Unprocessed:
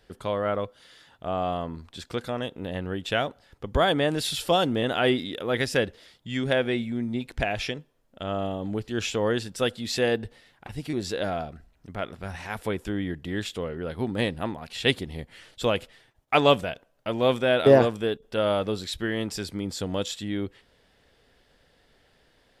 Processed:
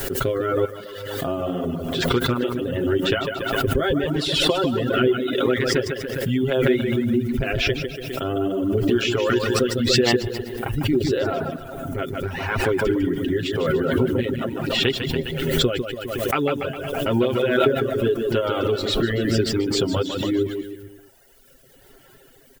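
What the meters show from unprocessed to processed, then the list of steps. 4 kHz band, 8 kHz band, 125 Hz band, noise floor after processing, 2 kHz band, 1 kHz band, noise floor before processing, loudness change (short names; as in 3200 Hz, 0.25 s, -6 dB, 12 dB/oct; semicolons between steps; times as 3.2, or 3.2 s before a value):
+5.5 dB, +5.5 dB, +7.0 dB, -52 dBFS, +4.5 dB, +1.0 dB, -64 dBFS, +4.5 dB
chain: Bessel low-pass 5100 Hz; rotary speaker horn 0.85 Hz; comb 7.5 ms, depth 77%; compressor 16:1, threshold -27 dBFS, peak gain reduction 19 dB; high shelf 3300 Hz -7 dB; added noise blue -65 dBFS; bouncing-ball echo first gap 0.15 s, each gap 0.9×, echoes 5; reverb removal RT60 1.4 s; dynamic EQ 720 Hz, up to -4 dB, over -46 dBFS, Q 2.2; small resonant body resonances 360/1400/2900 Hz, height 9 dB, ringing for 35 ms; backwards sustainer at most 33 dB/s; gain +8 dB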